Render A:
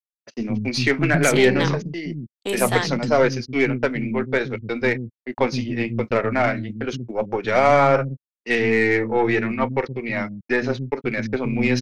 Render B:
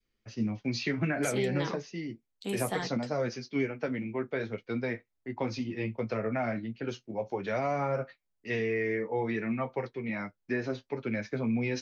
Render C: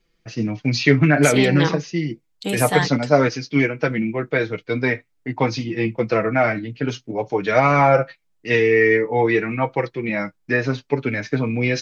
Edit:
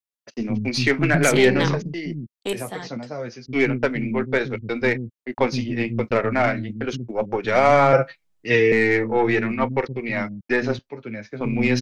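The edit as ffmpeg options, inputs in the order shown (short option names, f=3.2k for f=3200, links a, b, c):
-filter_complex "[1:a]asplit=2[a][b];[0:a]asplit=4[c][d][e][f];[c]atrim=end=2.532[g];[a]atrim=start=2.528:end=3.462[h];[d]atrim=start=3.458:end=7.932[i];[2:a]atrim=start=7.928:end=8.722[j];[e]atrim=start=8.718:end=10.792[k];[b]atrim=start=10.788:end=11.412[l];[f]atrim=start=11.408[m];[g][h]acrossfade=d=0.004:c1=hsin:c2=hsin[n];[n][i]acrossfade=d=0.004:c1=hsin:c2=hsin[o];[o][j]acrossfade=d=0.004:c1=hsin:c2=hsin[p];[p][k]acrossfade=d=0.004:c1=hsin:c2=hsin[q];[q][l]acrossfade=d=0.004:c1=hsin:c2=hsin[r];[r][m]acrossfade=d=0.004:c1=hsin:c2=hsin"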